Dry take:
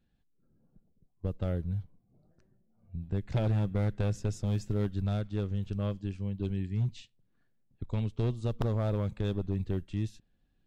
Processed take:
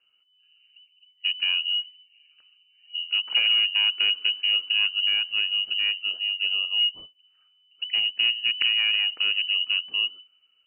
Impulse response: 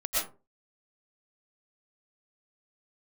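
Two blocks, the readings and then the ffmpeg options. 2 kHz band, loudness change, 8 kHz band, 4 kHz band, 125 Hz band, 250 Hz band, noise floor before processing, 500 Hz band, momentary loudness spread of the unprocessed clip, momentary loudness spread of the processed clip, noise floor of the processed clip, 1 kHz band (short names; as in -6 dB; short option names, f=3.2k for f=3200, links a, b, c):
+25.5 dB, +11.0 dB, n/a, +34.5 dB, under -40 dB, under -25 dB, -72 dBFS, under -15 dB, 8 LU, 7 LU, -66 dBFS, -3.0 dB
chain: -af "lowpass=f=2.6k:t=q:w=0.5098,lowpass=f=2.6k:t=q:w=0.6013,lowpass=f=2.6k:t=q:w=0.9,lowpass=f=2.6k:t=q:w=2.563,afreqshift=-3000,volume=6.5dB"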